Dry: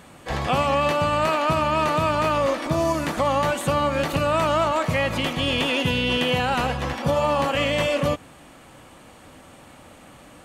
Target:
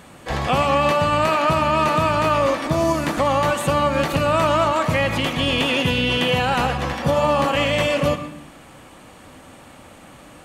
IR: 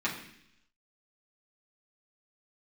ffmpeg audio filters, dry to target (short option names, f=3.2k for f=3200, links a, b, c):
-filter_complex "[0:a]asplit=2[a][b];[1:a]atrim=start_sample=2205,adelay=112[c];[b][c]afir=irnorm=-1:irlink=0,volume=-17.5dB[d];[a][d]amix=inputs=2:normalize=0,volume=2.5dB"